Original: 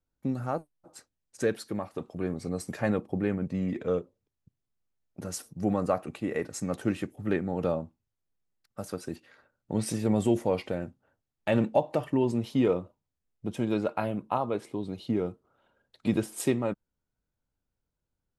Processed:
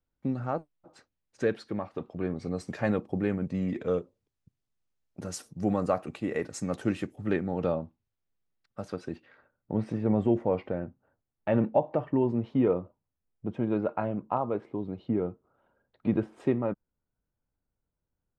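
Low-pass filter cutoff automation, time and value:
0:02.18 3,700 Hz
0:03.23 8,200 Hz
0:07.11 8,200 Hz
0:07.76 4,100 Hz
0:08.95 4,100 Hz
0:09.74 1,600 Hz

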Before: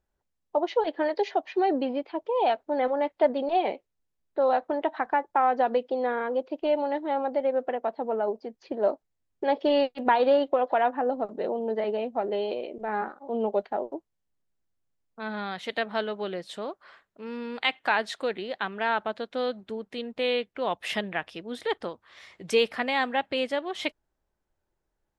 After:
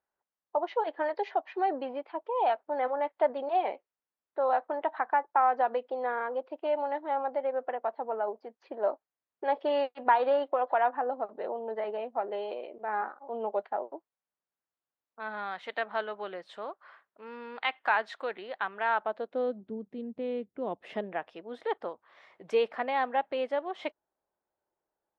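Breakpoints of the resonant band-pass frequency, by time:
resonant band-pass, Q 0.98
0:18.92 1,100 Hz
0:19.76 200 Hz
0:20.46 200 Hz
0:21.33 750 Hz

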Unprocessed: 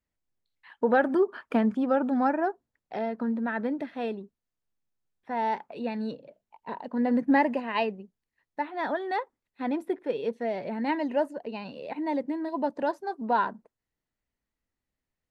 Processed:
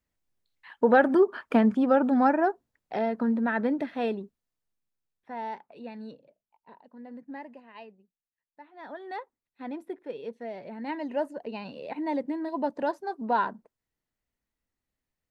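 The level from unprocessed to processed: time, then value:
0:04.20 +3 dB
0:05.65 −9 dB
0:06.15 −9 dB
0:06.98 −19 dB
0:08.61 −19 dB
0:09.10 −7.5 dB
0:10.76 −7.5 dB
0:11.42 −0.5 dB

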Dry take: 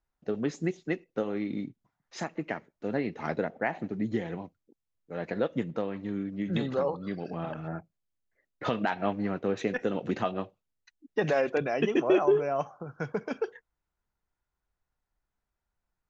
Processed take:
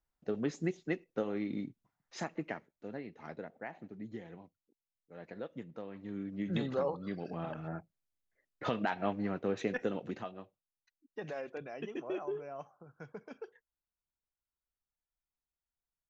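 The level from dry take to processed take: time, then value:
0:02.38 −4 dB
0:03.04 −14 dB
0:05.73 −14 dB
0:06.36 −4.5 dB
0:09.86 −4.5 dB
0:10.36 −15 dB

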